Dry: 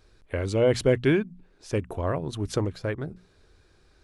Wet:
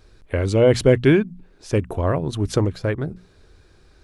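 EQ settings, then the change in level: low shelf 370 Hz +3 dB; +5.0 dB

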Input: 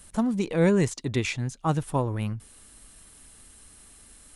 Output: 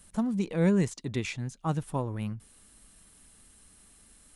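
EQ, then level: bell 190 Hz +5.5 dB 0.48 oct; -6.0 dB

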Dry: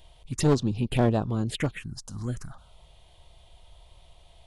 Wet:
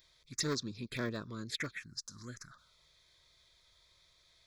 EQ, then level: tilt +4.5 dB/oct; high shelf 4700 Hz -9.5 dB; fixed phaser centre 2900 Hz, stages 6; -4.0 dB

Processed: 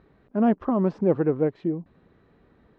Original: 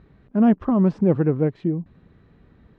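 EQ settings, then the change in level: air absorption 80 m; tone controls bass -11 dB, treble +8 dB; high shelf 2200 Hz -8 dB; +1.5 dB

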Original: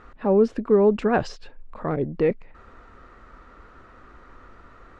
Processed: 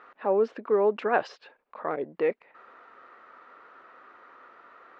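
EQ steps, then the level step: BPF 520–3400 Hz; 0.0 dB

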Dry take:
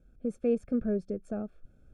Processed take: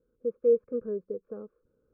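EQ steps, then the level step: double band-pass 700 Hz, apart 1.1 oct; air absorption 230 m; tilt -2 dB/oct; +5.5 dB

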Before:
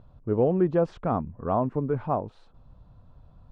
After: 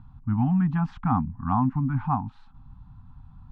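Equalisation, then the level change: Chebyshev band-stop 270–790 Hz, order 4; LPF 1900 Hz 6 dB/oct; +6.0 dB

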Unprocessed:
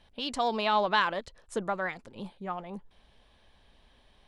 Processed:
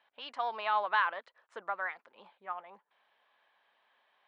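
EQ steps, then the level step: HPF 1100 Hz 12 dB/oct; LPF 1700 Hz 12 dB/oct; +2.0 dB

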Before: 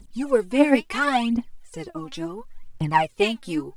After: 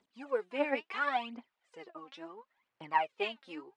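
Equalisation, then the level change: BPF 540–3100 Hz; -9.0 dB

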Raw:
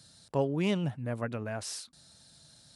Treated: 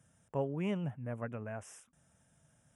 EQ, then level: Butterworth band-stop 4300 Hz, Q 1.3; bell 320 Hz -4.5 dB 0.37 oct; high shelf 3400 Hz -8 dB; -5.0 dB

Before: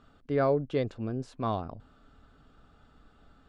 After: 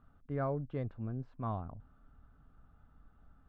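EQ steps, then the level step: LPF 1100 Hz 12 dB/oct; bell 430 Hz -12.5 dB 2 oct; 0.0 dB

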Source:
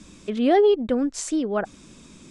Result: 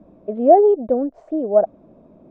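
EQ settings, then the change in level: synth low-pass 650 Hz, resonance Q 6.1; low shelf 100 Hz -7.5 dB; -1.0 dB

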